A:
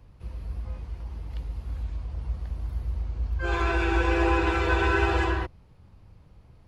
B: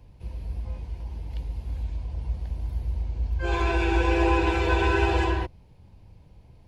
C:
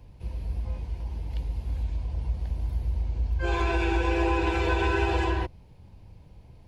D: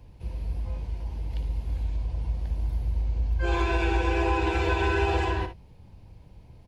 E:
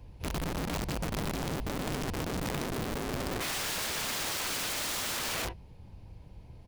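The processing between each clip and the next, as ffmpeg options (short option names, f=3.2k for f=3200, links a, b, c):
-af "superequalizer=10b=0.355:11b=0.631,volume=1.5dB"
-af "acompressor=threshold=-24dB:ratio=2.5,volume=1.5dB"
-af "aecho=1:1:58|73:0.282|0.141"
-af "aeval=exprs='(mod(28.2*val(0)+1,2)-1)/28.2':c=same"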